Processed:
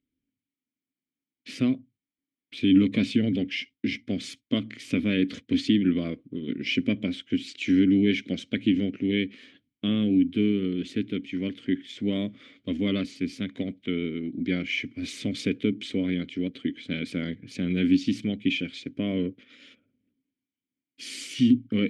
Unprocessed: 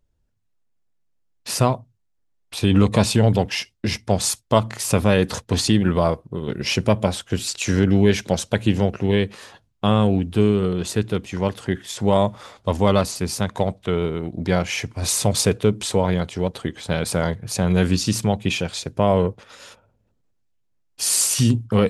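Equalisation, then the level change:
formant filter i
high-shelf EQ 7,600 Hz −7 dB
+7.5 dB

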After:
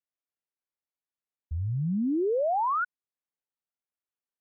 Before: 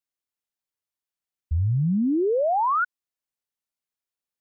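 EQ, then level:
high-frequency loss of the air 480 metres
low-shelf EQ 150 Hz −8 dB
−2.0 dB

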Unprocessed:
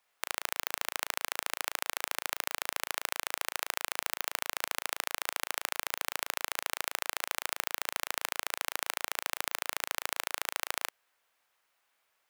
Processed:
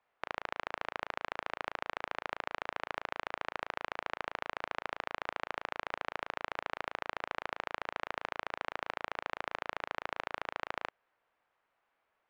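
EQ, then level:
head-to-tape spacing loss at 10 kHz 43 dB
+4.5 dB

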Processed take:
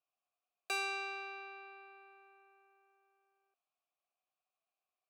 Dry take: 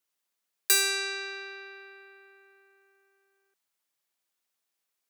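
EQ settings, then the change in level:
formant filter a
low-shelf EQ 210 Hz +12 dB
+6.0 dB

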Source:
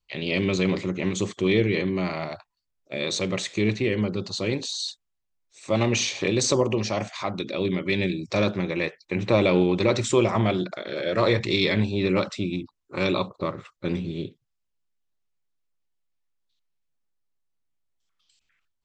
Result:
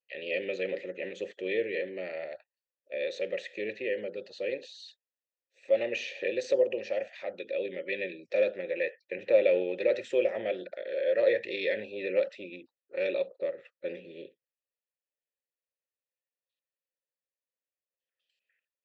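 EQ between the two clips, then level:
formant filter e
high-pass filter 290 Hz 6 dB per octave
high-shelf EQ 8,200 Hz −5.5 dB
+4.5 dB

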